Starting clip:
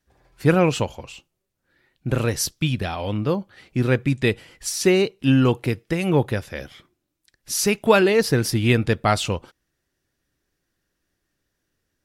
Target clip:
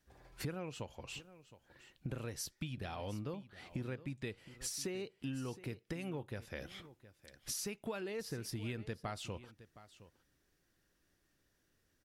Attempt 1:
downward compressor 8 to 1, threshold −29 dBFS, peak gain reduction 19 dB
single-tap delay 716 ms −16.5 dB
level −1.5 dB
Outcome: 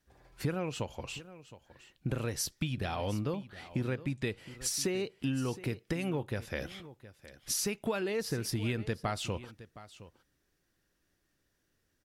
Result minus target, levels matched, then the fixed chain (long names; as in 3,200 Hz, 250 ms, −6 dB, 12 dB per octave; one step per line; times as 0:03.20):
downward compressor: peak gain reduction −8.5 dB
downward compressor 8 to 1, threshold −38.5 dBFS, peak gain reduction 27 dB
single-tap delay 716 ms −16.5 dB
level −1.5 dB